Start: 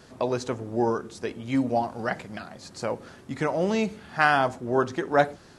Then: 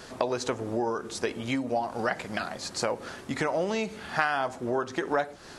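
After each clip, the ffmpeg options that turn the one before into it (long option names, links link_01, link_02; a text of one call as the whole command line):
ffmpeg -i in.wav -af "acompressor=threshold=-30dB:ratio=12,equalizer=frequency=120:width=0.43:gain=-8,volume=8.5dB" out.wav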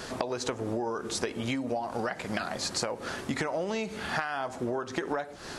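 ffmpeg -i in.wav -af "acompressor=threshold=-33dB:ratio=10,volume=5.5dB" out.wav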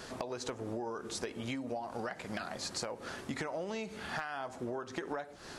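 ffmpeg -i in.wav -af "asoftclip=type=hard:threshold=-18.5dB,volume=-7dB" out.wav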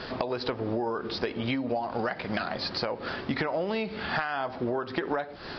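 ffmpeg -i in.wav -af "aresample=11025,aresample=44100,volume=9dB" out.wav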